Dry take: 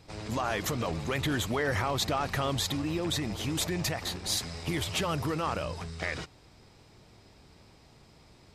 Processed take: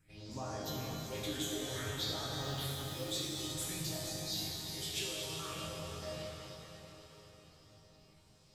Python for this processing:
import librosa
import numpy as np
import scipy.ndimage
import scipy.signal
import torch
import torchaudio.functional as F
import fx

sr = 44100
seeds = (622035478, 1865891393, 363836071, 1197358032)

p1 = fx.high_shelf(x, sr, hz=3600.0, db=7.5)
p2 = fx.resonator_bank(p1, sr, root=44, chord='major', decay_s=0.33)
p3 = fx.quant_companded(p2, sr, bits=6, at=(2.36, 3.11))
p4 = fx.phaser_stages(p3, sr, stages=4, low_hz=140.0, high_hz=2900.0, hz=0.55, feedback_pct=40)
p5 = p4 + fx.echo_diffused(p4, sr, ms=511, feedback_pct=50, wet_db=-14, dry=0)
y = fx.rev_plate(p5, sr, seeds[0], rt60_s=4.4, hf_ratio=0.8, predelay_ms=0, drr_db=-4.0)